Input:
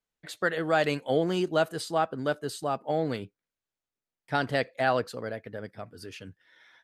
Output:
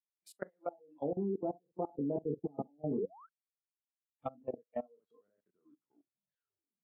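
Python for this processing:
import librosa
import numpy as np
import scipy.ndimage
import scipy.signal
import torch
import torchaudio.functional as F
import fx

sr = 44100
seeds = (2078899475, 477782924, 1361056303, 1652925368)

y = fx.tape_stop_end(x, sr, length_s=1.47)
y = fx.doppler_pass(y, sr, speed_mps=25, closest_m=5.2, pass_at_s=2.57)
y = fx.high_shelf(y, sr, hz=8000.0, db=11.5)
y = fx.room_early_taps(y, sr, ms=(21, 60), db=(-4.0, -10.5))
y = fx.spec_paint(y, sr, seeds[0], shape='rise', start_s=2.98, length_s=0.31, low_hz=350.0, high_hz=1600.0, level_db=-30.0)
y = fx.over_compress(y, sr, threshold_db=-34.0, ratio=-0.5)
y = fx.env_lowpass_down(y, sr, base_hz=510.0, full_db=-36.0)
y = scipy.signal.sosfilt(scipy.signal.butter(4, 170.0, 'highpass', fs=sr, output='sos'), y)
y = fx.peak_eq(y, sr, hz=3000.0, db=-13.0, octaves=2.8)
y = fx.level_steps(y, sr, step_db=22)
y = fx.noise_reduce_blind(y, sr, reduce_db=23)
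y = F.gain(torch.from_numpy(y), 10.5).numpy()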